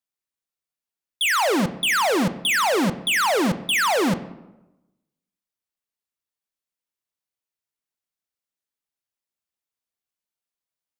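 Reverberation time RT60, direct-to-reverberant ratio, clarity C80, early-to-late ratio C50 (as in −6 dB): 1.0 s, 11.5 dB, 16.0 dB, 14.0 dB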